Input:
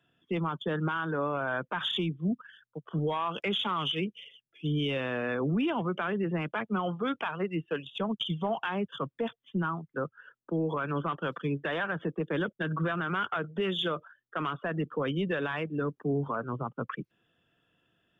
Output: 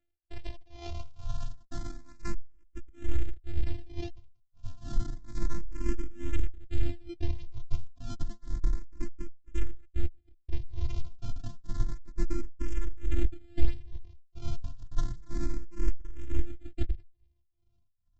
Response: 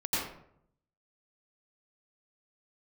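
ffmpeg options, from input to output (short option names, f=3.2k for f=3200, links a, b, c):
-filter_complex "[0:a]lowpass=3.1k,aemphasis=mode=production:type=50kf,aresample=16000,acrusher=samples=41:mix=1:aa=0.000001:lfo=1:lforange=24.6:lforate=0.95,aresample=44100,afftfilt=real='hypot(re,im)*cos(PI*b)':imag='0':win_size=512:overlap=0.75,tremolo=f=2.2:d=0.95,asubboost=boost=11.5:cutoff=180,asplit=2[a][b];[b]afreqshift=0.3[c];[a][c]amix=inputs=2:normalize=1"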